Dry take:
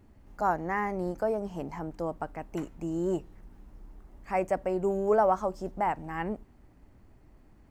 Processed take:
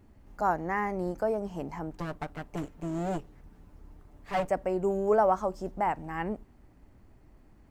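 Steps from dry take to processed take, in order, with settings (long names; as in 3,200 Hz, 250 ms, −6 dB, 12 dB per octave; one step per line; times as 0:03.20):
0:01.97–0:04.49: lower of the sound and its delayed copy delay 6.8 ms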